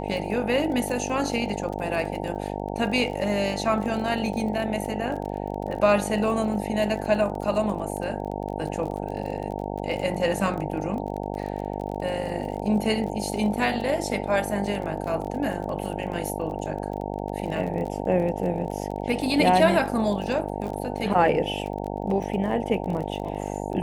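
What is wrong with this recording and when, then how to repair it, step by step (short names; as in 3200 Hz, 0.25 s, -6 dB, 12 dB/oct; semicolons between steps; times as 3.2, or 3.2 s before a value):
buzz 50 Hz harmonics 18 -31 dBFS
crackle 28/s -32 dBFS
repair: de-click; de-hum 50 Hz, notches 18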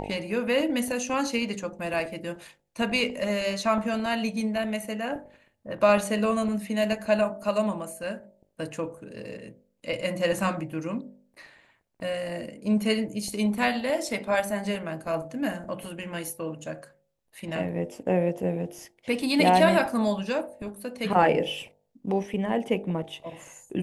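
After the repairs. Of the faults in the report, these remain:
none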